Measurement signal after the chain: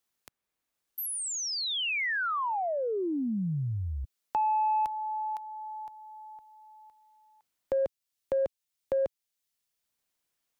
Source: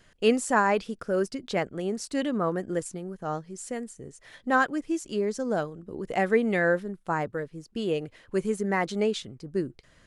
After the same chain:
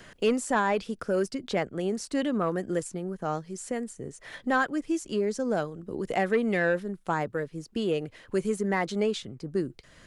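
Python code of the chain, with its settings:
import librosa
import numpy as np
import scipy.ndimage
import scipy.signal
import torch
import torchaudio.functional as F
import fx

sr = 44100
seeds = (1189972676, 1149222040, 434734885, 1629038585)

y = 10.0 ** (-14.5 / 20.0) * np.tanh(x / 10.0 ** (-14.5 / 20.0))
y = fx.band_squash(y, sr, depth_pct=40)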